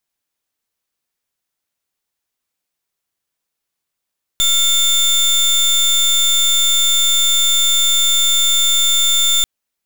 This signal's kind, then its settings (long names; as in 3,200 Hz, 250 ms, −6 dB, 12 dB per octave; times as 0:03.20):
pulse wave 3,560 Hz, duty 28% −13.5 dBFS 5.04 s